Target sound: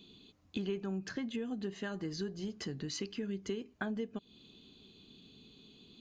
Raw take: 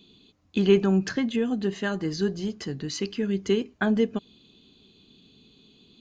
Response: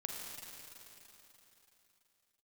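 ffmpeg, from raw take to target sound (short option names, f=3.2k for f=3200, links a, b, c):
-af "acompressor=threshold=-35dB:ratio=4,volume=-2dB"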